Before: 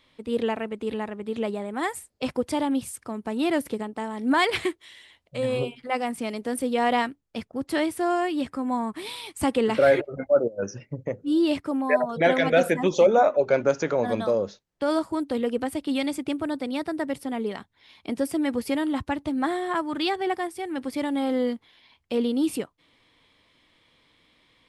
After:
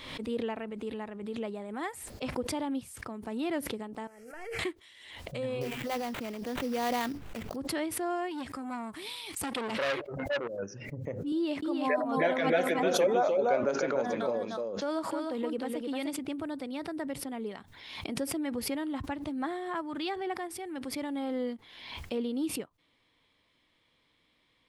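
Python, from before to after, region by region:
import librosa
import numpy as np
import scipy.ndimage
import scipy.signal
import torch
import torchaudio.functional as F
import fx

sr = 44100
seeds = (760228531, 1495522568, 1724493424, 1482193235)

y = fx.chain(x, sr, fx.delta_mod(bps=64000, step_db=-38.5),
    fx.fixed_phaser(hz=1000.0, stages=6),
    fx.comb_fb(f0_hz=460.0, decay_s=0.31, harmonics='all', damping=0.0, mix_pct=70), at=(4.07, 4.59))
y = fx.chain(y, sr, fx.sample_hold(seeds[0], rate_hz=5300.0, jitter_pct=20),
    fx.sustainer(db_per_s=36.0), at=(5.61, 7.56))
y = fx.chain(y, sr, fx.high_shelf(hz=2500.0, db=9.5),
    fx.transformer_sat(knee_hz=2300.0), at=(8.31, 10.59))
y = fx.chain(y, sr, fx.highpass(hz=200.0, slope=12),
    fx.echo_single(ms=303, db=-4.0), at=(11.32, 16.19))
y = fx.dynamic_eq(y, sr, hz=8800.0, q=0.75, threshold_db=-49.0, ratio=4.0, max_db=-6)
y = fx.pre_swell(y, sr, db_per_s=50.0)
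y = y * librosa.db_to_amplitude(-8.5)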